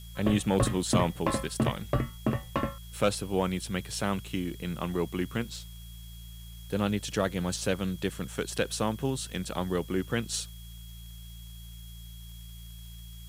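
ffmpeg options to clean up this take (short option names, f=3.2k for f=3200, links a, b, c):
-af "adeclick=t=4,bandreject=f=56.9:t=h:w=4,bandreject=f=113.8:t=h:w=4,bandreject=f=170.7:t=h:w=4,bandreject=f=3.3k:w=30,afftdn=nr=30:nf=-45"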